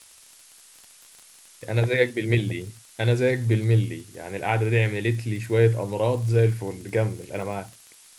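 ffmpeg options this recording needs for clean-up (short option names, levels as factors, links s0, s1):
-af "adeclick=t=4,afftdn=nr=16:nf=-51"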